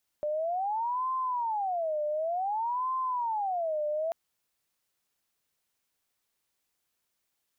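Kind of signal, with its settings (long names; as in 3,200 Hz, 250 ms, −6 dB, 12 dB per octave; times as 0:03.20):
siren wail 598–1,040 Hz 0.55 per second sine −27.5 dBFS 3.89 s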